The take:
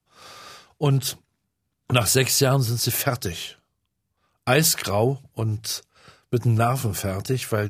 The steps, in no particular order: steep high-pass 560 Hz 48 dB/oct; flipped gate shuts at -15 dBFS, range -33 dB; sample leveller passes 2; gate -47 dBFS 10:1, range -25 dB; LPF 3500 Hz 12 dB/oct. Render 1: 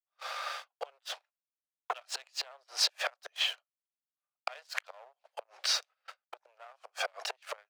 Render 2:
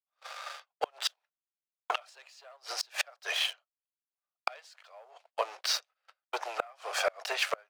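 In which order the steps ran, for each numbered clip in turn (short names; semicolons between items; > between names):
gate > LPF > flipped gate > sample leveller > steep high-pass; LPF > sample leveller > steep high-pass > gate > flipped gate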